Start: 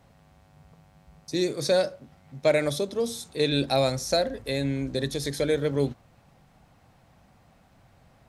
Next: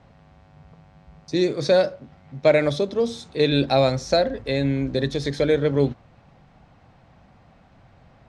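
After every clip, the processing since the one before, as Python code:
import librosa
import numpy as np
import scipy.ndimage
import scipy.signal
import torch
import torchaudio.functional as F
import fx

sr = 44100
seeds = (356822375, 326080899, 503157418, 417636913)

y = fx.air_absorb(x, sr, metres=130.0)
y = y * 10.0 ** (5.5 / 20.0)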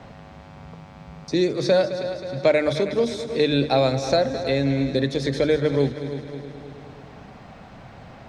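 y = fx.hum_notches(x, sr, base_hz=50, count=3)
y = fx.echo_heads(y, sr, ms=106, heads='second and third', feedback_pct=46, wet_db=-14)
y = fx.band_squash(y, sr, depth_pct=40)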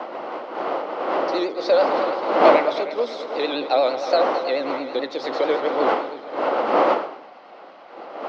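y = fx.dmg_wind(x, sr, seeds[0], corner_hz=610.0, level_db=-22.0)
y = fx.vibrato(y, sr, rate_hz=9.0, depth_cents=82.0)
y = fx.cabinet(y, sr, low_hz=400.0, low_slope=24, high_hz=4200.0, hz=(420.0, 650.0, 950.0, 1700.0, 2400.0, 3600.0), db=(-9, -3, -3, -9, -6, -7))
y = y * 10.0 ** (5.0 / 20.0)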